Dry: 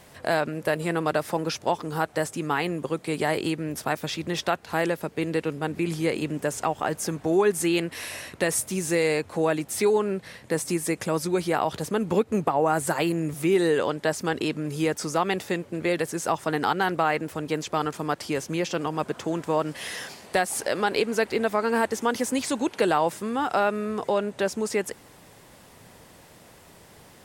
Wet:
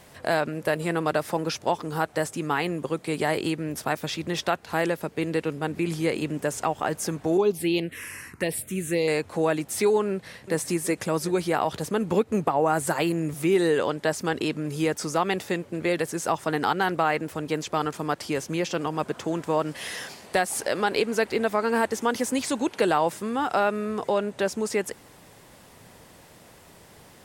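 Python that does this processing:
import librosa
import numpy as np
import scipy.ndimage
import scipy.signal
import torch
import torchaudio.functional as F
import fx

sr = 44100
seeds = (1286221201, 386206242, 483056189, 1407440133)

y = fx.env_phaser(x, sr, low_hz=520.0, high_hz=1800.0, full_db=-17.5, at=(7.37, 9.08))
y = fx.echo_throw(y, sr, start_s=10.1, length_s=0.47, ms=370, feedback_pct=55, wet_db=-11.5)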